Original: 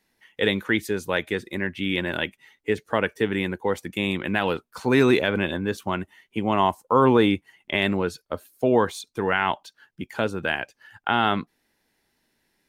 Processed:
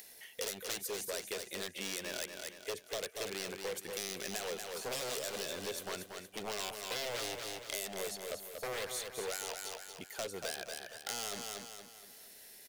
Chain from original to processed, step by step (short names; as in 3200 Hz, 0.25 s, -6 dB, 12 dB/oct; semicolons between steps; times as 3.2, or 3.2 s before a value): wavefolder -21 dBFS; band shelf 540 Hz +10 dB 1.1 oct; upward compressor, threshold -33 dBFS; pre-emphasis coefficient 0.9; on a send: feedback echo 0.234 s, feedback 42%, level -7.5 dB; on the sum: compressor, threshold -36 dBFS, peak gain reduction 7 dB; gain +1 dB